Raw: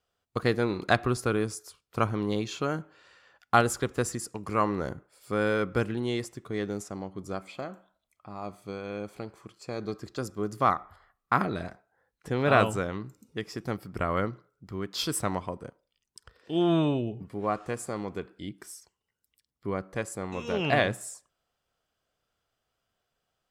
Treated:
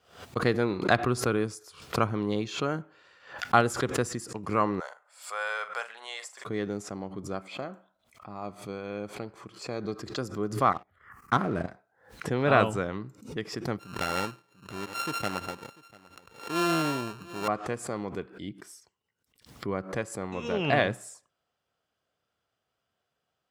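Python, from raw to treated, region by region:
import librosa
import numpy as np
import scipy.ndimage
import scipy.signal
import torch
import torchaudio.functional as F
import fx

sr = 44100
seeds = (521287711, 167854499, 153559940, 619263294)

y = fx.chain(x, sr, fx.cheby2_highpass(hz=330.0, order=4, stop_db=40),
    fx.peak_eq(hz=7800.0, db=8.5, octaves=0.34),
    fx.doubler(ms=44.0, db=-11.5), at=(4.8, 6.45))
y = fx.chain(y, sr, fx.level_steps(step_db=12),
    fx.env_phaser(low_hz=580.0, high_hz=4000.0, full_db=-30.5),
    fx.leveller(passes=2), at=(10.72, 11.68))
y = fx.chain(y, sr, fx.sample_sort(block=32),
    fx.low_shelf(hz=270.0, db=-7.5),
    fx.echo_single(ms=694, db=-22.5), at=(13.79, 17.48))
y = scipy.signal.sosfilt(scipy.signal.butter(2, 85.0, 'highpass', fs=sr, output='sos'), y)
y = fx.high_shelf(y, sr, hz=7700.0, db=-9.5)
y = fx.pre_swell(y, sr, db_per_s=120.0)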